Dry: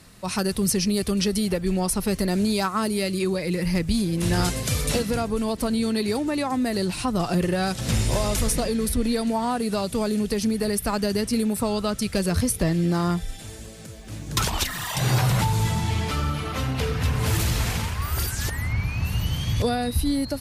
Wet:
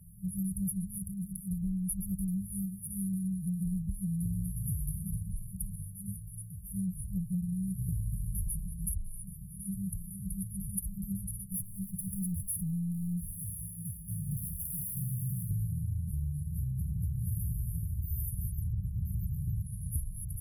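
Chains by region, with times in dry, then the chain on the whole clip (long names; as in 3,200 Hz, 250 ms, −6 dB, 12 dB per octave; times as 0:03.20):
0:00.98–0:01.51: mains-hum notches 50/100 Hz + saturating transformer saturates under 1,600 Hz
0:11.52–0:15.51: notch comb filter 640 Hz + downward compressor 4 to 1, threshold −27 dBFS + mid-hump overdrive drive 26 dB, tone 5,900 Hz, clips at −18 dBFS
whole clip: brick-wall band-stop 200–9,700 Hz; downward compressor 5 to 1, threshold −31 dBFS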